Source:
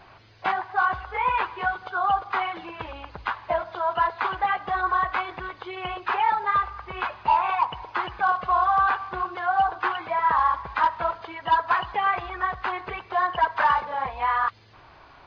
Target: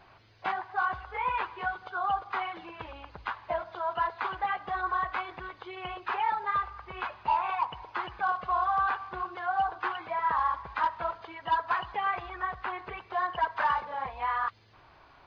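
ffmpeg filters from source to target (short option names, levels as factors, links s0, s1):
-filter_complex "[0:a]asettb=1/sr,asplit=3[s0][s1][s2];[s0]atrim=end=12.364[s3];[s1]atrim=start=12.36:end=12.97,asetpts=PTS-STARTPTS,afade=t=in:d=0.004:c=qsin,afade=t=out:st=0.606:d=0.004:c=qsin,acrossover=split=3600[s4][s5];[s5]acompressor=threshold=0.00178:ratio=4:attack=1:release=60[s6];[s4][s6]amix=inputs=2:normalize=0[s7];[s2]atrim=start=12.966[s8];[s3][s7]acrossfade=d=0.004:c1=hsin:c2=qsin[s9];[s9][s8]acrossfade=d=0.004:c1=qsin:c2=hsin,volume=0.473"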